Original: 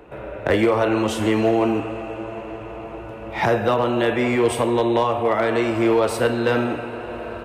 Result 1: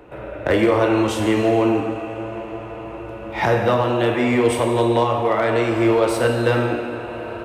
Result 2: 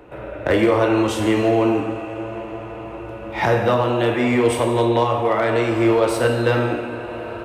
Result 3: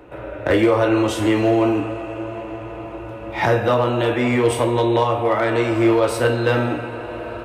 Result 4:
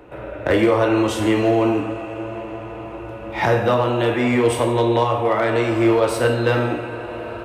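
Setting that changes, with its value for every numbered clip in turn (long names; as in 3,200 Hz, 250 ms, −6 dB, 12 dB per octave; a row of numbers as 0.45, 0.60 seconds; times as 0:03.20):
reverb whose tail is shaped and stops, gate: 510, 340, 90, 200 milliseconds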